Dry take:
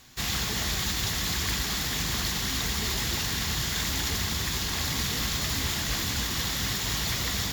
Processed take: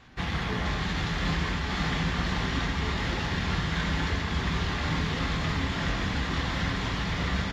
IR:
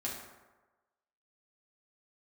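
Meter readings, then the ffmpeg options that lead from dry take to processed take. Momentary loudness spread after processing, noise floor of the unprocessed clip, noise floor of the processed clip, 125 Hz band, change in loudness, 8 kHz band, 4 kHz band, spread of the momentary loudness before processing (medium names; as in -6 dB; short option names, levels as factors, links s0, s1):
1 LU, -31 dBFS, -32 dBFS, +3.5 dB, -2.0 dB, -16.0 dB, -6.0 dB, 1 LU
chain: -filter_complex "[0:a]lowpass=2300,alimiter=limit=0.0668:level=0:latency=1:release=194,asplit=2[s0][s1];[s1]adelay=26,volume=0.316[s2];[s0][s2]amix=inputs=2:normalize=0,asplit=2[s3][s4];[1:a]atrim=start_sample=2205,asetrate=32193,aresample=44100[s5];[s4][s5]afir=irnorm=-1:irlink=0,volume=0.668[s6];[s3][s6]amix=inputs=2:normalize=0" -ar 48000 -c:a libopus -b:a 48k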